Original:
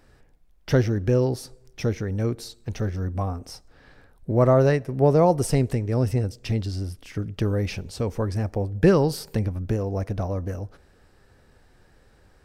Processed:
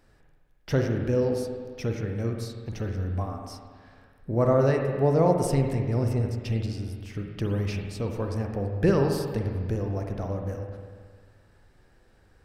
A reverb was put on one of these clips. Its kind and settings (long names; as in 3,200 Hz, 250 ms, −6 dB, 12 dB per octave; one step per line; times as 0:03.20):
spring reverb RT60 1.7 s, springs 44/50 ms, chirp 70 ms, DRR 2.5 dB
level −5 dB